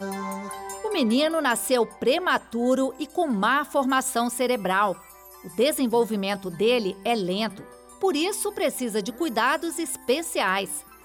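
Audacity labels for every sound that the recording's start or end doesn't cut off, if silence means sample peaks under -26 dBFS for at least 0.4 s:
5.580000	7.480000	sound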